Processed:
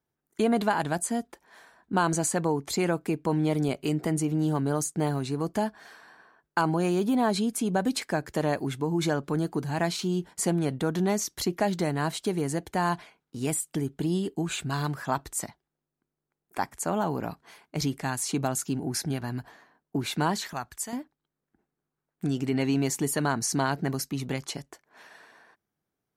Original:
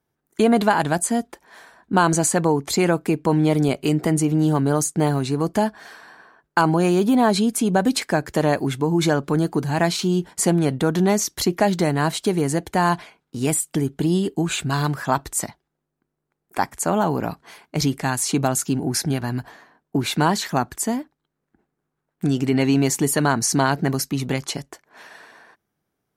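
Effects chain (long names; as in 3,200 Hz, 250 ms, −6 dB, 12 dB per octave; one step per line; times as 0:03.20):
0:20.53–0:20.93: parametric band 280 Hz −12.5 dB 2.6 octaves
level −7.5 dB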